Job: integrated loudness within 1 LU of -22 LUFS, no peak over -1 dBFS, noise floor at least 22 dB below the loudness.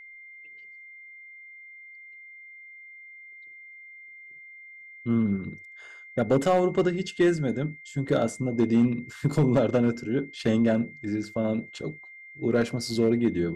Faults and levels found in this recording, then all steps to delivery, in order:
clipped samples 0.4%; clipping level -14.5 dBFS; steady tone 2.1 kHz; tone level -44 dBFS; loudness -26.0 LUFS; peak level -14.5 dBFS; loudness target -22.0 LUFS
-> clip repair -14.5 dBFS; band-stop 2.1 kHz, Q 30; trim +4 dB

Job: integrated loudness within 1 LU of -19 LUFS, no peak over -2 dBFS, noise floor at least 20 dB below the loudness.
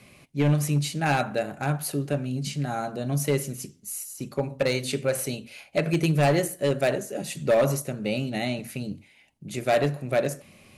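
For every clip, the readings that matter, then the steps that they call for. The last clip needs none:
clipped samples 1.0%; clipping level -15.5 dBFS; loudness -26.5 LUFS; peak level -15.5 dBFS; loudness target -19.0 LUFS
-> clip repair -15.5 dBFS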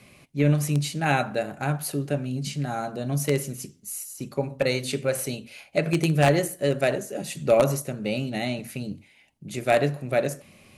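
clipped samples 0.0%; loudness -26.0 LUFS; peak level -6.5 dBFS; loudness target -19.0 LUFS
-> trim +7 dB; peak limiter -2 dBFS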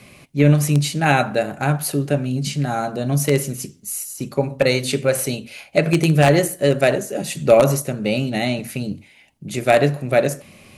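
loudness -19.0 LUFS; peak level -2.0 dBFS; noise floor -50 dBFS

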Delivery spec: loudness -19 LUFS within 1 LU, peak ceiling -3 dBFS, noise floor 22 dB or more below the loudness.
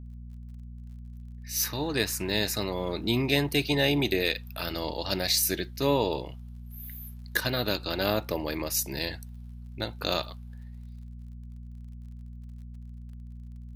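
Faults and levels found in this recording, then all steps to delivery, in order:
tick rate 37 per s; hum 60 Hz; highest harmonic 240 Hz; hum level -39 dBFS; loudness -28.0 LUFS; peak level -7.5 dBFS; loudness target -19.0 LUFS
-> de-click; de-hum 60 Hz, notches 4; trim +9 dB; peak limiter -3 dBFS

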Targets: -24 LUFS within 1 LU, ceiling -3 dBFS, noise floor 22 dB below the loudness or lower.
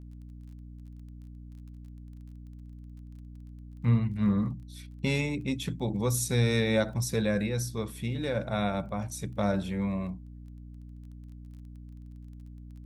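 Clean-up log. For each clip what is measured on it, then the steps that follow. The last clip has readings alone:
tick rate 20 per s; hum 60 Hz; highest harmonic 300 Hz; hum level -41 dBFS; loudness -29.5 LUFS; peak level -14.5 dBFS; loudness target -24.0 LUFS
-> de-click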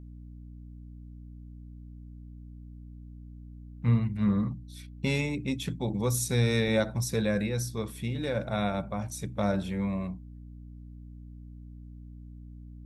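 tick rate 0 per s; hum 60 Hz; highest harmonic 300 Hz; hum level -41 dBFS
-> de-hum 60 Hz, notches 5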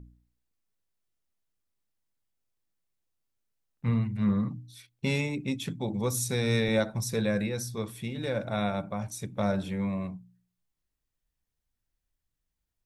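hum not found; loudness -30.5 LUFS; peak level -15.0 dBFS; loudness target -24.0 LUFS
-> trim +6.5 dB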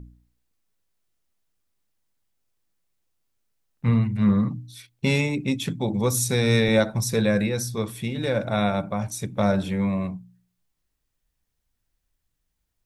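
loudness -24.0 LUFS; peak level -8.5 dBFS; noise floor -78 dBFS

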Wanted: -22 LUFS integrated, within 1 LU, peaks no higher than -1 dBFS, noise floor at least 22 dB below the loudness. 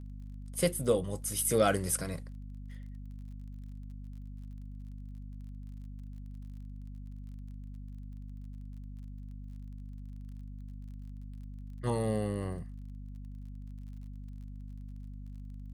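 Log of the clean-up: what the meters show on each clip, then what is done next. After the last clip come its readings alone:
tick rate 34 per s; hum 50 Hz; highest harmonic 250 Hz; hum level -41 dBFS; loudness -38.0 LUFS; peak level -13.5 dBFS; loudness target -22.0 LUFS
-> de-click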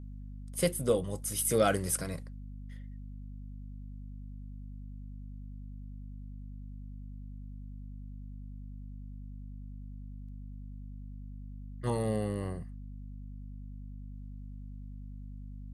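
tick rate 0.064 per s; hum 50 Hz; highest harmonic 250 Hz; hum level -41 dBFS
-> hum notches 50/100/150/200/250 Hz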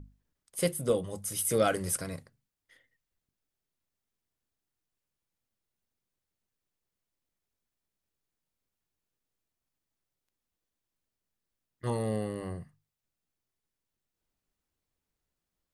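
hum not found; loudness -31.5 LUFS; peak level -13.0 dBFS; loudness target -22.0 LUFS
-> trim +9.5 dB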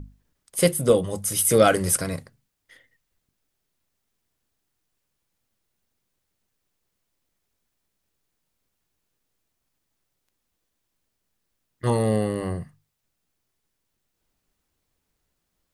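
loudness -22.0 LUFS; peak level -3.5 dBFS; noise floor -78 dBFS

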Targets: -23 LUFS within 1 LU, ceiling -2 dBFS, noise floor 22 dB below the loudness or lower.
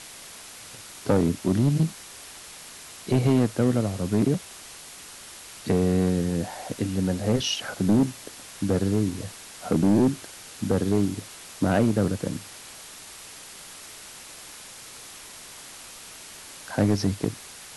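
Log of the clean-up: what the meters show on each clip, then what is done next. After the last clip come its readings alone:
clipped samples 1.1%; clipping level -14.0 dBFS; noise floor -44 dBFS; noise floor target -47 dBFS; loudness -25.0 LUFS; peak level -14.0 dBFS; loudness target -23.0 LUFS
-> clip repair -14 dBFS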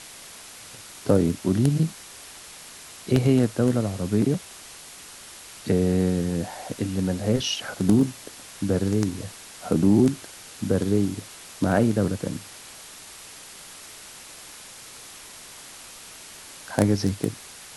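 clipped samples 0.0%; noise floor -44 dBFS; noise floor target -46 dBFS
-> noise reduction 6 dB, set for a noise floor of -44 dBFS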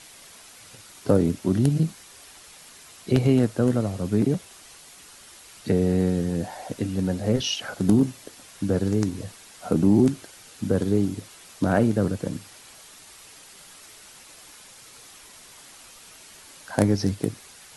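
noise floor -48 dBFS; loudness -24.0 LUFS; peak level -5.0 dBFS; loudness target -23.0 LUFS
-> trim +1 dB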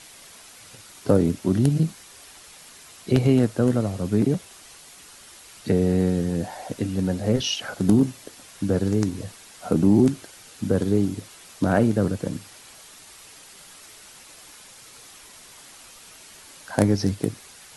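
loudness -23.0 LUFS; peak level -4.0 dBFS; noise floor -47 dBFS

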